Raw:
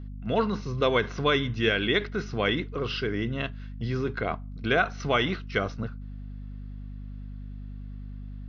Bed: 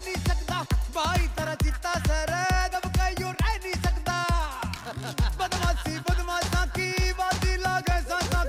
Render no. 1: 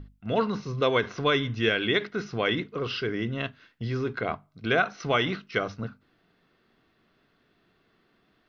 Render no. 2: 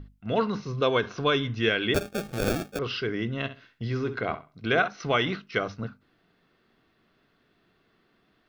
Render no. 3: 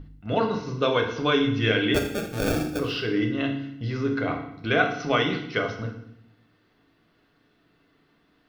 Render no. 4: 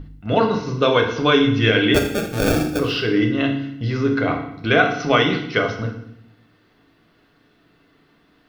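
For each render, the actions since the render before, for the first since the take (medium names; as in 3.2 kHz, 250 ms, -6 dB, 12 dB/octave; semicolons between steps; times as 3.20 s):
hum notches 50/100/150/200/250 Hz
0.78–1.44 s: band-stop 2 kHz, Q 6.9; 1.94–2.79 s: sample-rate reducer 1 kHz; 3.38–4.88 s: flutter echo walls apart 11.2 m, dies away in 0.3 s
FDN reverb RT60 0.73 s, low-frequency decay 1.5×, high-frequency decay 1×, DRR 2.5 dB
trim +6.5 dB; peak limiter -3 dBFS, peak gain reduction 3 dB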